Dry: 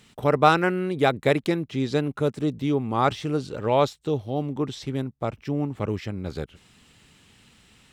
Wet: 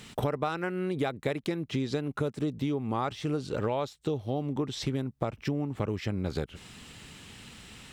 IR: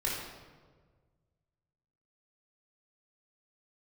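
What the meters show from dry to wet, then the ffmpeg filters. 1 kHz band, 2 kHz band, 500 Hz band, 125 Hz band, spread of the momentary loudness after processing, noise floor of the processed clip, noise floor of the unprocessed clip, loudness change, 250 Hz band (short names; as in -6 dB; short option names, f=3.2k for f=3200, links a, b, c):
-11.0 dB, -9.5 dB, -8.0 dB, -4.5 dB, 16 LU, -56 dBFS, -57 dBFS, -7.0 dB, -5.5 dB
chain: -af "acompressor=threshold=-34dB:ratio=16,volume=7.5dB"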